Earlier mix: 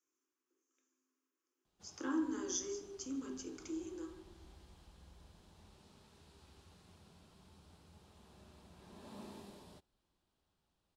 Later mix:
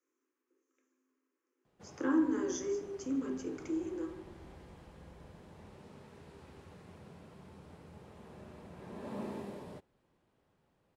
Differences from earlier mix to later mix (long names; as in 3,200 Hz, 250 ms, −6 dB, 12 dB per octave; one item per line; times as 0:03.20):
speech −3.5 dB
master: add octave-band graphic EQ 125/250/500/1,000/2,000/4,000 Hz +11/+6/+12/+4/+10/−4 dB